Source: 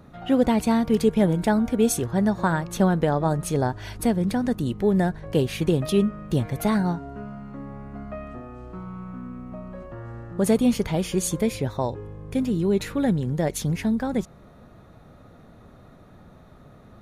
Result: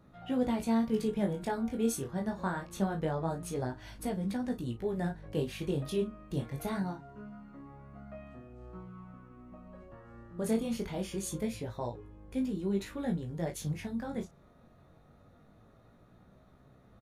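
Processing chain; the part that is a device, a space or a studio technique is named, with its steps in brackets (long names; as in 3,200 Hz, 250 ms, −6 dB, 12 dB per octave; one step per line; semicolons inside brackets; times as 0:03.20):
double-tracked vocal (double-tracking delay 35 ms −10.5 dB; chorus effect 0.24 Hz, delay 15.5 ms, depth 6.8 ms)
level −8.5 dB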